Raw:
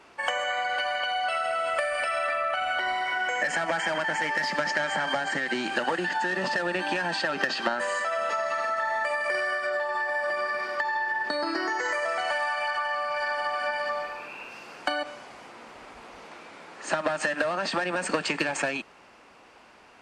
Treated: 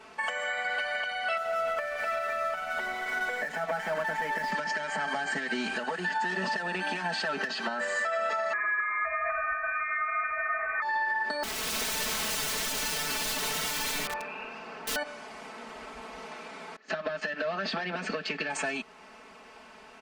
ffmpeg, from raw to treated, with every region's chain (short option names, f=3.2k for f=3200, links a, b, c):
-filter_complex "[0:a]asettb=1/sr,asplit=3[a][b][c];[a]atrim=end=1.374[d];[b]atrim=start=1.37:end=4.52,asetpts=PTS-STARTPTS,afade=t=in:d=0.004:c=qsin,afade=t=out:st=3.146:d=0.004:c=qsin,lowpass=f=1.5k:p=1,aeval=exprs='sgn(val(0))*max(abs(val(0))-0.00631,0)':c=same[e];[c]atrim=start=4.516[f];[d][e]acrossfade=d=0.004:c1=hsin:c2=qsin[g];[g][f]acrossfade=d=0.004:c1=qsin:c2=hsin,asettb=1/sr,asplit=3[h][i][j];[h]atrim=end=8.534[k];[i]atrim=start=8.53:end=10.82,asetpts=PTS-STARTPTS,afade=t=in:d=0.004:c=qsin,afade=t=out:st=2.286:d=0.004:c=qsin,highpass=f=1.2k:t=q:w=1.8,lowpass=f=2.6k:t=q:w=0.5098,lowpass=f=2.6k:t=q:w=0.6013,lowpass=f=2.6k:t=q:w=0.9,lowpass=f=2.6k:t=q:w=2.563,afreqshift=-3000[l];[j]atrim=start=10.816[m];[k][l]acrossfade=d=0.004:c1=hsin:c2=qsin[n];[n][m]acrossfade=d=0.004:c1=qsin:c2=hsin,asettb=1/sr,asplit=3[o][p][q];[o]atrim=end=11.434[r];[p]atrim=start=11.43:end=14.96,asetpts=PTS-STARTPTS,afade=t=in:d=0.004:c=qsin,afade=t=out:st=3.526:d=0.004:c=qsin,aemphasis=mode=reproduction:type=75fm,aeval=exprs='(mod(29.9*val(0)+1,2)-1)/29.9':c=same[s];[q]atrim=start=14.956[t];[r][s]acrossfade=d=0.004:c1=hsin:c2=qsin[u];[u][t]acrossfade=d=0.004:c1=qsin:c2=hsin,asettb=1/sr,asplit=3[v][w][x];[v]atrim=end=16.764[y];[w]atrim=start=16.76:end=18.5,asetpts=PTS-STARTPTS,afade=t=in:d=0.004:c=qsin,afade=t=out:st=1.736:d=0.004:c=qsin,lowpass=f=5.2k:w=0.5412,lowpass=f=5.2k:w=1.3066,agate=range=-20dB:threshold=-38dB:ratio=16:release=100:detection=peak,equalizer=f=950:t=o:w=0.31:g=-10.5[z];[x]atrim=start=18.496[aa];[y][z]acrossfade=d=0.004:c1=hsin:c2=qsin[ab];[ab][aa]acrossfade=d=0.004:c1=qsin:c2=hsin,aecho=1:1:4.6:0.96,alimiter=limit=-21.5dB:level=0:latency=1:release=459"